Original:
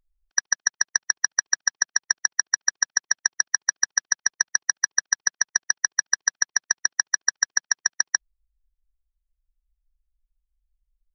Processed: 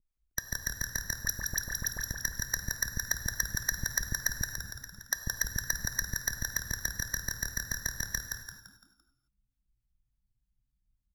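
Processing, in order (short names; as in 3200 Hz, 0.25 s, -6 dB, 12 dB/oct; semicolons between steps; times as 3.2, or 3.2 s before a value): tracing distortion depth 0.046 ms; 4.53–5.11 level quantiser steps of 17 dB; transient shaper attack -8 dB, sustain -2 dB; 1.14–2.04 dispersion highs, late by 51 ms, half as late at 1700 Hz; harmonic tremolo 3.4 Hz, depth 100%, crossover 410 Hz; on a send: frequency-shifting echo 0.17 s, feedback 39%, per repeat -71 Hz, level -4 dB; on the sum: non-linear reverb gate 0.29 s flat, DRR 8 dB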